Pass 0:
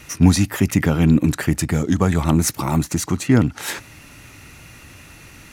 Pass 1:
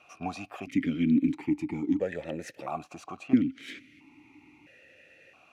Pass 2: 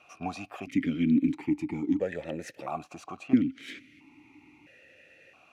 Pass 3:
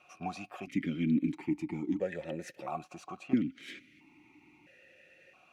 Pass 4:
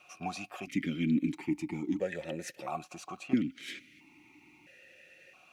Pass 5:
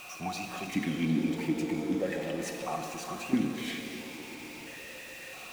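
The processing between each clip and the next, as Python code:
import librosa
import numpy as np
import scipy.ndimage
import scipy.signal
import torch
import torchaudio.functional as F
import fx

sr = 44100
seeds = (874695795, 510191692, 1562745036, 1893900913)

y1 = fx.vowel_held(x, sr, hz=1.5)
y2 = y1
y3 = y2 + 0.36 * np.pad(y2, (int(5.5 * sr / 1000.0), 0))[:len(y2)]
y3 = y3 * librosa.db_to_amplitude(-4.0)
y4 = fx.high_shelf(y3, sr, hz=2800.0, db=8.5)
y5 = y4 + 0.5 * 10.0 ** (-42.5 / 20.0) * np.sign(y4)
y5 = fx.rev_shimmer(y5, sr, seeds[0], rt60_s=2.9, semitones=7, shimmer_db=-8, drr_db=4.0)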